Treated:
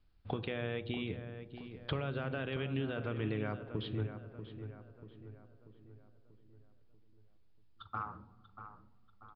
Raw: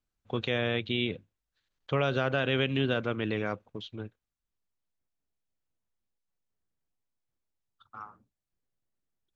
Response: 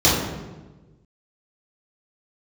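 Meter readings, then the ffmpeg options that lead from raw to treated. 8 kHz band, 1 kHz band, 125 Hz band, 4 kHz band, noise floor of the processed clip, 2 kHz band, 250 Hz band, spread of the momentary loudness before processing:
can't be measured, −6.0 dB, −3.5 dB, −11.5 dB, −62 dBFS, −10.5 dB, −6.0 dB, 18 LU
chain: -filter_complex "[0:a]acrossover=split=3200[link_01][link_02];[link_02]acompressor=threshold=-52dB:ratio=4:attack=1:release=60[link_03];[link_01][link_03]amix=inputs=2:normalize=0,lowshelf=frequency=130:gain=10,acompressor=threshold=-43dB:ratio=6,asplit=2[link_04][link_05];[link_05]adelay=638,lowpass=frequency=2200:poles=1,volume=-10dB,asplit=2[link_06][link_07];[link_07]adelay=638,lowpass=frequency=2200:poles=1,volume=0.51,asplit=2[link_08][link_09];[link_09]adelay=638,lowpass=frequency=2200:poles=1,volume=0.51,asplit=2[link_10][link_11];[link_11]adelay=638,lowpass=frequency=2200:poles=1,volume=0.51,asplit=2[link_12][link_13];[link_13]adelay=638,lowpass=frequency=2200:poles=1,volume=0.51,asplit=2[link_14][link_15];[link_15]adelay=638,lowpass=frequency=2200:poles=1,volume=0.51[link_16];[link_04][link_06][link_08][link_10][link_12][link_14][link_16]amix=inputs=7:normalize=0,asplit=2[link_17][link_18];[1:a]atrim=start_sample=2205[link_19];[link_18][link_19]afir=irnorm=-1:irlink=0,volume=-35.5dB[link_20];[link_17][link_20]amix=inputs=2:normalize=0,aresample=11025,aresample=44100,volume=8dB"

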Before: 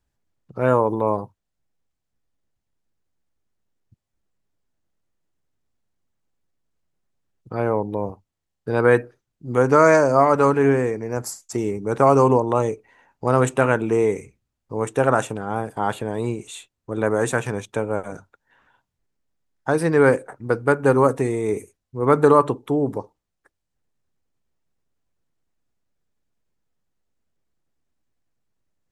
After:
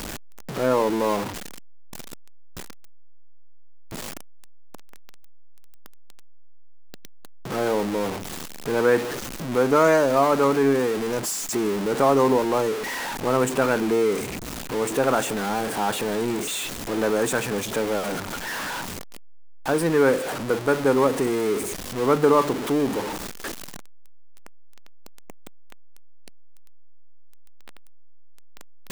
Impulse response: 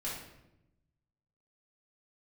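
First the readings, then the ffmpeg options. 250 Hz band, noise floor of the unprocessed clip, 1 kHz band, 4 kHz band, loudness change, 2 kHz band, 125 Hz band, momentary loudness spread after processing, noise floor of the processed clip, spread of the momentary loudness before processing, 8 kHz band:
−1.0 dB, −80 dBFS, −3.0 dB, +11.0 dB, −3.0 dB, −1.5 dB, −7.5 dB, 17 LU, −37 dBFS, 15 LU, +6.0 dB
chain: -af "aeval=exprs='val(0)+0.5*0.119*sgn(val(0))':channel_layout=same,lowshelf=frequency=150:width_type=q:width=1.5:gain=-7,volume=-5.5dB"

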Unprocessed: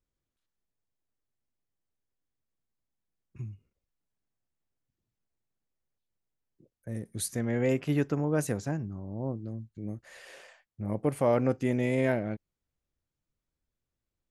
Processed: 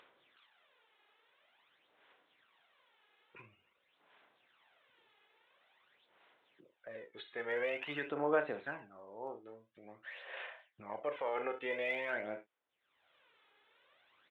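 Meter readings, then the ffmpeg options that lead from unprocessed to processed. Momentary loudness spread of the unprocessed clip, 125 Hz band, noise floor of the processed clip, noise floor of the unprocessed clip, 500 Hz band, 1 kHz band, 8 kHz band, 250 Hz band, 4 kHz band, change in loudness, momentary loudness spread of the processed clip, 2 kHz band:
16 LU, −27.5 dB, −79 dBFS, below −85 dBFS, −7.5 dB, −3.0 dB, below −35 dB, −17.5 dB, −2.5 dB, −9.0 dB, 22 LU, +0.5 dB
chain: -filter_complex "[0:a]highpass=560,asplit=2[link_01][link_02];[link_02]adelay=34,volume=-12dB[link_03];[link_01][link_03]amix=inputs=2:normalize=0,asplit=2[link_04][link_05];[link_05]aecho=0:1:36|67:0.266|0.158[link_06];[link_04][link_06]amix=inputs=2:normalize=0,acompressor=mode=upward:threshold=-46dB:ratio=2.5,alimiter=level_in=2dB:limit=-24dB:level=0:latency=1:release=95,volume=-2dB,equalizer=frequency=1100:width_type=o:width=2.9:gain=4,aresample=8000,aresample=44100,tiltshelf=frequency=1500:gain=-3,aphaser=in_gain=1:out_gain=1:delay=2.4:decay=0.57:speed=0.48:type=sinusoidal,volume=-3.5dB"

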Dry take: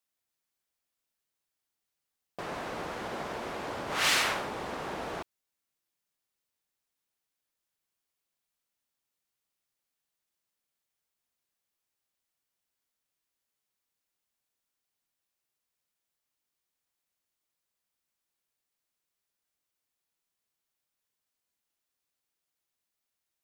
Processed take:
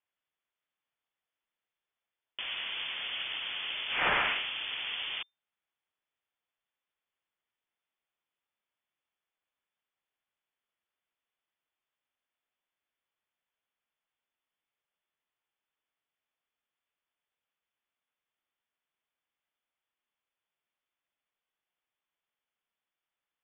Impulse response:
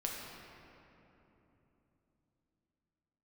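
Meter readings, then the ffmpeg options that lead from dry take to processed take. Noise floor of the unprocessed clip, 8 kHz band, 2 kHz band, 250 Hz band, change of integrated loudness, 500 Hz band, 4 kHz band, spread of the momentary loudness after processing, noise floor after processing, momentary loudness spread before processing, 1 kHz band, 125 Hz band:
below −85 dBFS, below −35 dB, +1.5 dB, −11.0 dB, 0.0 dB, −8.0 dB, +2.5 dB, 11 LU, below −85 dBFS, 16 LU, −3.0 dB, −9.0 dB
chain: -af "acrusher=bits=2:mode=log:mix=0:aa=0.000001,lowpass=frequency=3100:width_type=q:width=0.5098,lowpass=frequency=3100:width_type=q:width=0.6013,lowpass=frequency=3100:width_type=q:width=0.9,lowpass=frequency=3100:width_type=q:width=2.563,afreqshift=-3600"

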